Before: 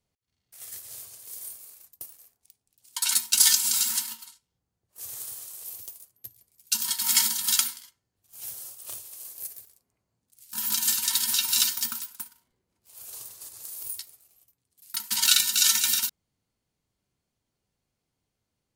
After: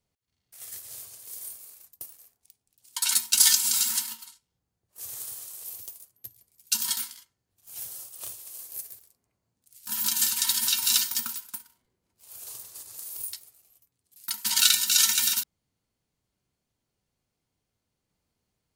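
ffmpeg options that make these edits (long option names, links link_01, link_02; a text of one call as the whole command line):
ffmpeg -i in.wav -filter_complex "[0:a]asplit=2[link_01][link_02];[link_01]atrim=end=6.972[link_03];[link_02]atrim=start=7.628[link_04];[link_03][link_04]acrossfade=duration=0.004:curve1=hsin:curve2=hsin" out.wav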